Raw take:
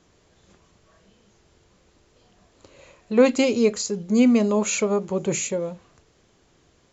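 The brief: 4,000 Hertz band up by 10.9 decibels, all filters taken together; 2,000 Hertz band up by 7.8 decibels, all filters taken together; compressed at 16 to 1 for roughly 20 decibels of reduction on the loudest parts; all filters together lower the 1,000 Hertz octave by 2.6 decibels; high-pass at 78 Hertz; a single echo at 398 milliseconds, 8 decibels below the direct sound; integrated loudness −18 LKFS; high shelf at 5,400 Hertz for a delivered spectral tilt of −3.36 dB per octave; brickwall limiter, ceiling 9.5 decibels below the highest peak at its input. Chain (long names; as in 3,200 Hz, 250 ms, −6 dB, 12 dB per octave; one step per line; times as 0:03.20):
high-pass filter 78 Hz
parametric band 1,000 Hz −5.5 dB
parametric band 2,000 Hz +6 dB
parametric band 4,000 Hz +8.5 dB
high-shelf EQ 5,400 Hz +9 dB
downward compressor 16 to 1, threshold −32 dBFS
brickwall limiter −30.5 dBFS
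single-tap delay 398 ms −8 dB
level +21.5 dB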